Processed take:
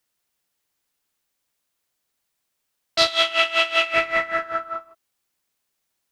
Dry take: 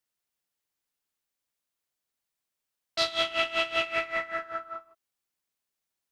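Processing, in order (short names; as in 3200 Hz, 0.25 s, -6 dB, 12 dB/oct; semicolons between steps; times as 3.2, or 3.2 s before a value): 3.07–3.94 HPF 700 Hz 6 dB/oct; gain +9 dB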